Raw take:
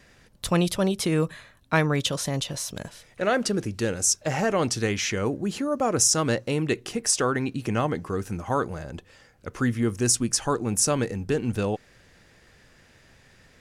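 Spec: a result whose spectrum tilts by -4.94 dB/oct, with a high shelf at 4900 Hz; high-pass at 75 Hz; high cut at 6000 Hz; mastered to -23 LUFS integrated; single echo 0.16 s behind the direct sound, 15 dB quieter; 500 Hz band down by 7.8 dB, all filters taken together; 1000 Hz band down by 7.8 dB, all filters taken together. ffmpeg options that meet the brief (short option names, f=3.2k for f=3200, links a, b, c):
-af "highpass=75,lowpass=6k,equalizer=f=500:t=o:g=-8,equalizer=f=1k:t=o:g=-7.5,highshelf=f=4.9k:g=-8.5,aecho=1:1:160:0.178,volume=7dB"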